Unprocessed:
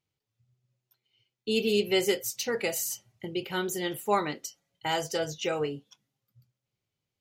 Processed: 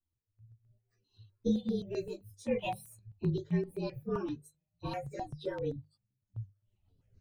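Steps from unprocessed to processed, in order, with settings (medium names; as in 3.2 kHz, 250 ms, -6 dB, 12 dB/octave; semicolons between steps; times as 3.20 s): frequency axis rescaled in octaves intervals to 112%; recorder AGC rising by 13 dB/s; RIAA curve playback; reverb removal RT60 1.2 s; peaking EQ 7.6 kHz -2.5 dB 0.28 oct; hum notches 50/100/150/200 Hz; chorus voices 4, 0.3 Hz, delay 14 ms, depth 4.2 ms; rotary cabinet horn 0.65 Hz, later 6.7 Hz, at 3.70 s; stepped phaser 7.7 Hz 520–6800 Hz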